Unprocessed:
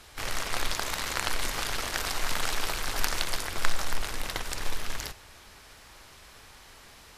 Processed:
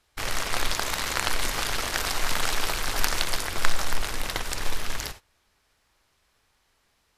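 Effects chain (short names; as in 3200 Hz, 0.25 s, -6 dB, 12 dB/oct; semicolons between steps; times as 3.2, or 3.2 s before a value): gate -43 dBFS, range -21 dB; gain +3.5 dB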